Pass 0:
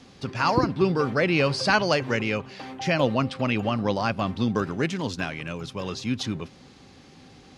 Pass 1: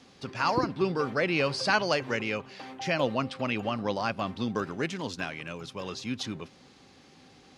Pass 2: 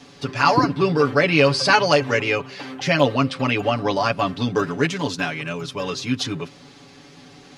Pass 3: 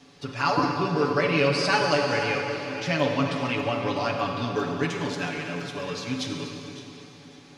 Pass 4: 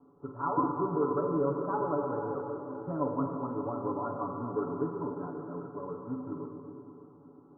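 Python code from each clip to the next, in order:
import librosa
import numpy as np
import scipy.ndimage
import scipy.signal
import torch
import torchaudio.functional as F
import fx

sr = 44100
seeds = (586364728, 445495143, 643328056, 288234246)

y1 = fx.low_shelf(x, sr, hz=180.0, db=-8.0)
y1 = y1 * librosa.db_to_amplitude(-3.5)
y2 = y1 + 0.86 * np.pad(y1, (int(7.0 * sr / 1000.0), 0))[:len(y1)]
y2 = y2 * librosa.db_to_amplitude(7.5)
y3 = fx.reverse_delay_fb(y2, sr, ms=283, feedback_pct=47, wet_db=-12.0)
y3 = fx.rev_plate(y3, sr, seeds[0], rt60_s=3.3, hf_ratio=0.9, predelay_ms=0, drr_db=2.0)
y3 = y3 * librosa.db_to_amplitude(-8.0)
y4 = fx.rattle_buzz(y3, sr, strikes_db=-32.0, level_db=-20.0)
y4 = scipy.signal.sosfilt(scipy.signal.cheby1(6, 9, 1400.0, 'lowpass', fs=sr, output='sos'), y4)
y4 = y4 * librosa.db_to_amplitude(-2.0)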